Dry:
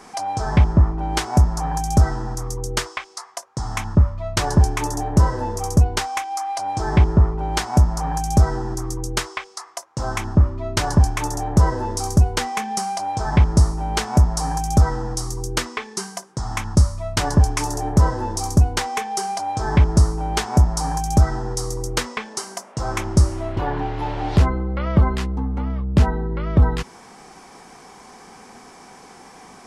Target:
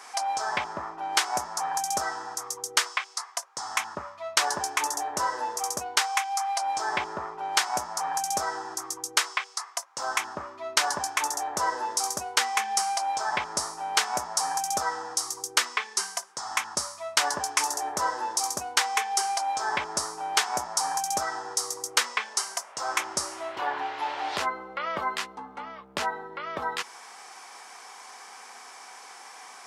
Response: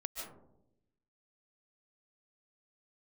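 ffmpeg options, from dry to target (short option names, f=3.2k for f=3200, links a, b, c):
-af "highpass=910,volume=1.5dB"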